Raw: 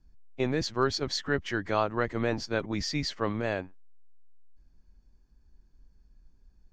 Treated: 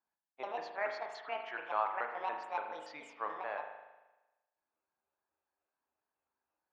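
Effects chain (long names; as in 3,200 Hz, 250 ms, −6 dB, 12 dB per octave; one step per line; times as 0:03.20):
pitch shifter gated in a rhythm +8 semitones, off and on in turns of 143 ms
four-pole ladder band-pass 1,100 Hz, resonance 35%
spring reverb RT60 1.1 s, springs 38 ms, chirp 45 ms, DRR 4 dB
level +4.5 dB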